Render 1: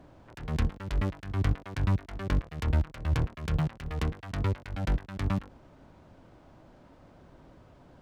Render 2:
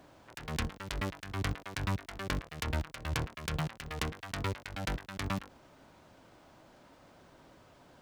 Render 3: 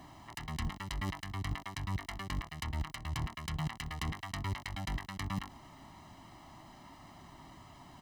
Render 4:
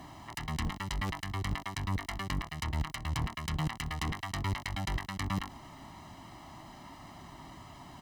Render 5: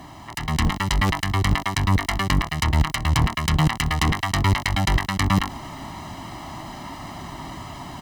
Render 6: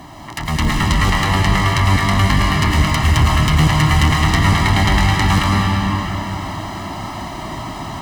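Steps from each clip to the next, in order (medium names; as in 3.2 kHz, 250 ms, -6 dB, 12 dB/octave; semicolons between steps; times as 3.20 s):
tilt EQ +2.5 dB/octave
comb 1 ms, depth 91%; reverse; compression 6:1, threshold -36 dBFS, peak gain reduction 13 dB; reverse; trim +2.5 dB
one-sided clip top -36.5 dBFS; trim +4.5 dB
level rider gain up to 7 dB; trim +7 dB
algorithmic reverb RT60 3.9 s, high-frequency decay 0.8×, pre-delay 70 ms, DRR -2.5 dB; saturation -7.5 dBFS, distortion -21 dB; trim +4 dB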